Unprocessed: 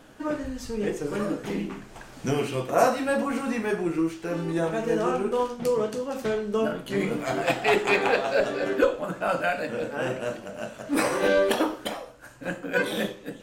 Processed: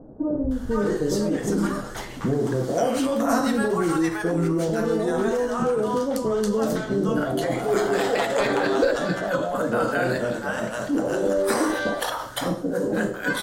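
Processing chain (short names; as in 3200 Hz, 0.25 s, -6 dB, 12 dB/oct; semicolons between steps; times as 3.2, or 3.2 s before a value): bell 2500 Hz -13.5 dB 0.44 oct; in parallel at -1 dB: negative-ratio compressor -30 dBFS, ratio -0.5; on the sum: bands offset in time lows, highs 0.51 s, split 700 Hz; gain +1.5 dB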